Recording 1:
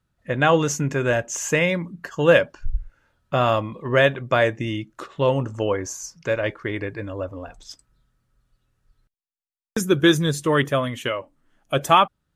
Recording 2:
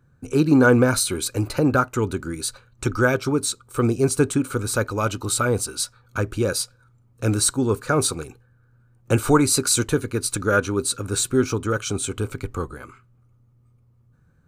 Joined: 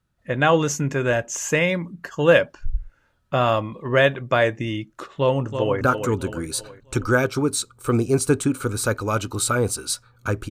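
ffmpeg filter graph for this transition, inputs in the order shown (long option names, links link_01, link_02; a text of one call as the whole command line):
ffmpeg -i cue0.wav -i cue1.wav -filter_complex "[0:a]apad=whole_dur=10.5,atrim=end=10.5,atrim=end=5.812[link_01];[1:a]atrim=start=1.708:end=6.4[link_02];[link_01][link_02]acrossfade=duration=0.004:curve1=hsin:curve2=hsin,asplit=2[link_03][link_04];[link_04]afade=type=in:start_time=5.18:duration=0.01,afade=type=out:start_time=5.81:duration=0.01,aecho=0:1:330|660|990|1320|1650:0.421697|0.189763|0.0853935|0.0384271|0.0172922[link_05];[link_03][link_05]amix=inputs=2:normalize=0" out.wav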